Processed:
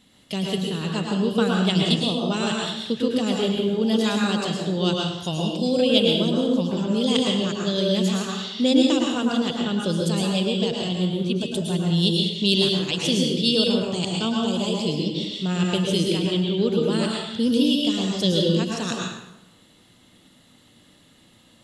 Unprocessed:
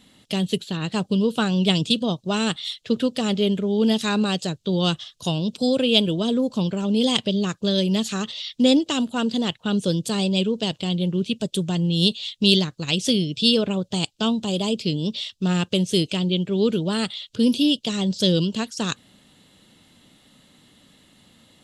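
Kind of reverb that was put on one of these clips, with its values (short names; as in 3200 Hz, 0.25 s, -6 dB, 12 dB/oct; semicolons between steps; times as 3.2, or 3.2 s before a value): plate-style reverb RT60 0.92 s, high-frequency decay 0.75×, pre-delay 95 ms, DRR -1.5 dB; gain -3.5 dB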